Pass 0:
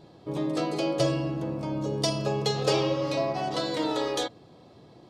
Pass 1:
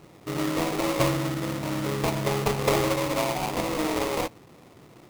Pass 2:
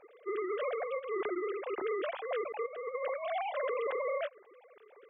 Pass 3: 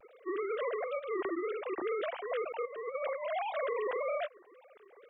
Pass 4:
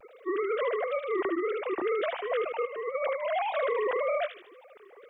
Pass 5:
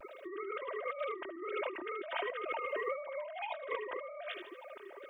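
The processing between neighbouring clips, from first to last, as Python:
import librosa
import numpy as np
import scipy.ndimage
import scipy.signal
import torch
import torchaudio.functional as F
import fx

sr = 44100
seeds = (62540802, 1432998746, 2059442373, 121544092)

y1 = fx.sample_hold(x, sr, seeds[0], rate_hz=1600.0, jitter_pct=20)
y1 = y1 * librosa.db_to_amplitude(1.5)
y2 = fx.sine_speech(y1, sr)
y2 = fx.over_compress(y2, sr, threshold_db=-27.0, ratio=-0.5)
y2 = y2 * librosa.db_to_amplitude(-7.0)
y3 = fx.wow_flutter(y2, sr, seeds[1], rate_hz=2.1, depth_cents=130.0)
y4 = fx.echo_wet_highpass(y3, sr, ms=76, feedback_pct=44, hz=2600.0, wet_db=-3.5)
y4 = y4 * librosa.db_to_amplitude(5.5)
y5 = y4 + 0.81 * np.pad(y4, (int(3.2 * sr / 1000.0), 0))[:len(y4)]
y5 = fx.over_compress(y5, sr, threshold_db=-36.0, ratio=-1.0)
y5 = y5 * librosa.db_to_amplitude(-4.5)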